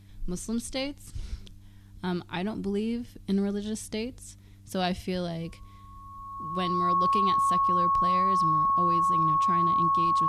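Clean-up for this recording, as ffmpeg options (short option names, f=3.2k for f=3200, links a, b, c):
-af "bandreject=f=98.9:t=h:w=4,bandreject=f=197.8:t=h:w=4,bandreject=f=296.7:t=h:w=4,bandreject=f=1.1k:w=30"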